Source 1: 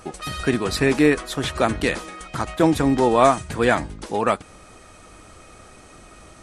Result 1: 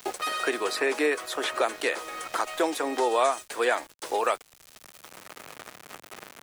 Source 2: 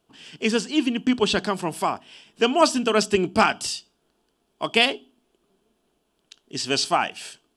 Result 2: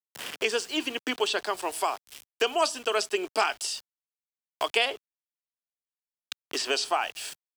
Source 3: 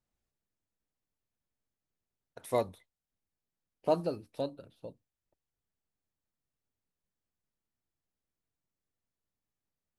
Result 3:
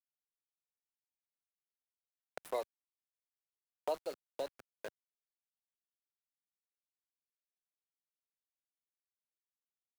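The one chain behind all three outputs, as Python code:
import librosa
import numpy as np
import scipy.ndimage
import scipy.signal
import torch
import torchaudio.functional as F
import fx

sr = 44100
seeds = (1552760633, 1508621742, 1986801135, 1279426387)

y = scipy.signal.sosfilt(scipy.signal.butter(4, 400.0, 'highpass', fs=sr, output='sos'), x)
y = fx.high_shelf(y, sr, hz=8200.0, db=3.0)
y = np.where(np.abs(y) >= 10.0 ** (-40.0 / 20.0), y, 0.0)
y = fx.band_squash(y, sr, depth_pct=70)
y = y * librosa.db_to_amplitude(-4.0)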